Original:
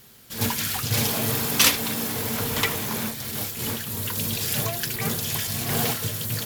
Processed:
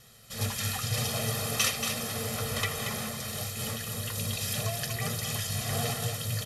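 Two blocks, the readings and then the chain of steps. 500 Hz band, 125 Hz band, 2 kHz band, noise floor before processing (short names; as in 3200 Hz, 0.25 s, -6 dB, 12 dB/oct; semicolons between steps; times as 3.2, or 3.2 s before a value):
-4.5 dB, -2.5 dB, -6.0 dB, -36 dBFS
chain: steep low-pass 12000 Hz 36 dB/oct; comb 1.6 ms, depth 74%; compressor 1.5:1, threshold -30 dBFS, peak gain reduction 6.5 dB; flange 1 Hz, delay 8 ms, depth 2 ms, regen +80%; echo 0.231 s -6.5 dB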